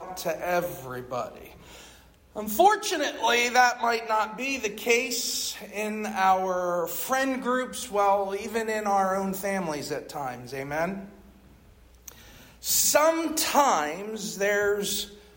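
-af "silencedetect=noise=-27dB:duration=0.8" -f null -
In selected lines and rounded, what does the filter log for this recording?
silence_start: 1.24
silence_end: 2.37 | silence_duration: 1.13
silence_start: 10.94
silence_end: 12.08 | silence_duration: 1.15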